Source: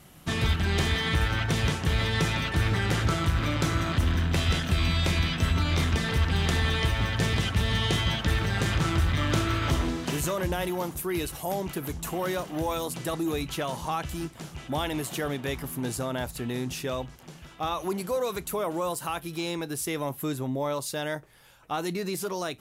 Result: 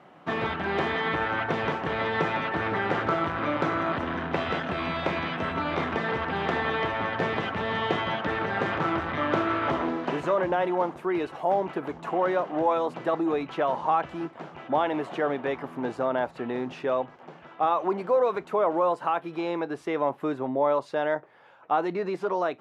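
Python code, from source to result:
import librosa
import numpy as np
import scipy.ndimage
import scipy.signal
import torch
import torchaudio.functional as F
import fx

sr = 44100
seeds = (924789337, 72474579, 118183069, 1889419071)

y = fx.bandpass_edges(x, sr, low_hz=230.0, high_hz=2100.0)
y = fx.peak_eq(y, sr, hz=770.0, db=8.0, octaves=2.1)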